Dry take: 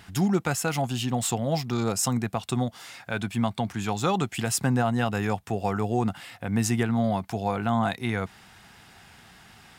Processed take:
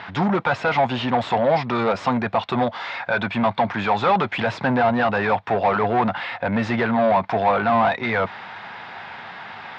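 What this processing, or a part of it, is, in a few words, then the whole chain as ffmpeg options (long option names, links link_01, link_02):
overdrive pedal into a guitar cabinet: -filter_complex "[0:a]asplit=2[link_01][link_02];[link_02]highpass=frequency=720:poles=1,volume=24dB,asoftclip=type=tanh:threshold=-12.5dB[link_03];[link_01][link_03]amix=inputs=2:normalize=0,lowpass=frequency=4500:poles=1,volume=-6dB,highpass=86,equalizer=frequency=100:width_type=q:width=4:gain=4,equalizer=frequency=330:width_type=q:width=4:gain=-3,equalizer=frequency=570:width_type=q:width=4:gain=5,equalizer=frequency=940:width_type=q:width=4:gain=6,equalizer=frequency=2900:width_type=q:width=4:gain=-6,lowpass=frequency=3500:width=0.5412,lowpass=frequency=3500:width=1.3066"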